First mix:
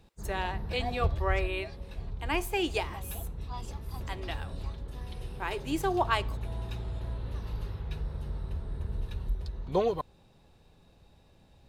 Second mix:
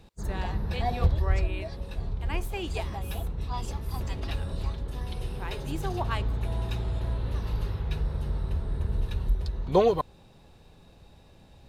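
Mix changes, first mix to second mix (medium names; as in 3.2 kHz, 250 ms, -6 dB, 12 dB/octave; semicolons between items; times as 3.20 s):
speech -5.5 dB; background +6.0 dB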